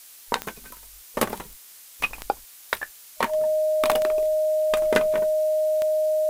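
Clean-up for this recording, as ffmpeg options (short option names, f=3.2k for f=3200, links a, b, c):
-af "adeclick=t=4,bandreject=f=620:w=30,afftdn=nr=24:nf=-47"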